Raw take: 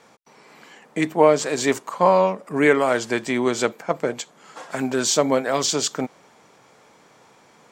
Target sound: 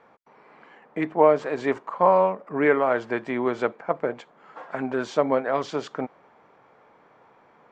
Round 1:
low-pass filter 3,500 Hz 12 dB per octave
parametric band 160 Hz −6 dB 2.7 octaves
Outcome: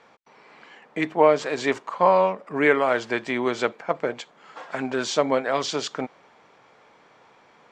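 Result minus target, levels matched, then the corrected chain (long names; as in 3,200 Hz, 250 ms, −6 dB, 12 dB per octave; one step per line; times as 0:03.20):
4,000 Hz band +10.5 dB
low-pass filter 1,600 Hz 12 dB per octave
parametric band 160 Hz −6 dB 2.7 octaves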